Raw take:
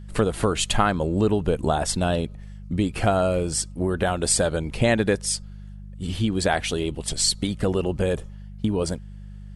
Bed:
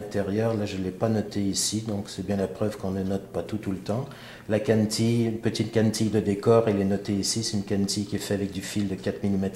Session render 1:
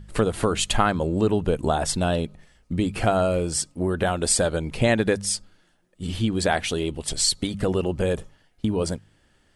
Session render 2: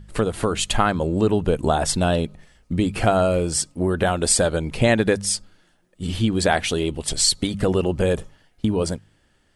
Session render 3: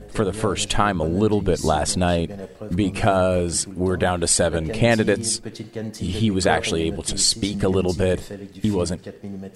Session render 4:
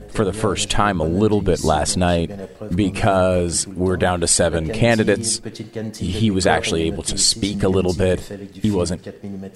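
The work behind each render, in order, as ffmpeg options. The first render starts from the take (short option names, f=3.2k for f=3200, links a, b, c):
-af "bandreject=f=50:t=h:w=4,bandreject=f=100:t=h:w=4,bandreject=f=150:t=h:w=4,bandreject=f=200:t=h:w=4"
-af "dynaudnorm=f=120:g=13:m=3.5dB"
-filter_complex "[1:a]volume=-8dB[a];[0:a][a]amix=inputs=2:normalize=0"
-af "volume=2.5dB,alimiter=limit=-3dB:level=0:latency=1"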